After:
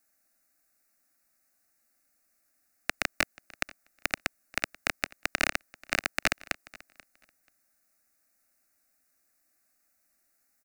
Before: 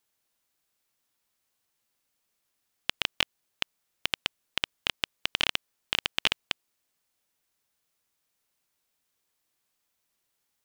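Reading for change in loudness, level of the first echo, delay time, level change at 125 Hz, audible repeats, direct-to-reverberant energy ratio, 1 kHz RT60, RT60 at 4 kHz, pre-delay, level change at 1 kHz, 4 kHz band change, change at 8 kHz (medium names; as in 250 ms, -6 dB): -1.0 dB, -22.5 dB, 485 ms, -0.5 dB, 1, no reverb, no reverb, no reverb, no reverb, +3.0 dB, -8.5 dB, +4.5 dB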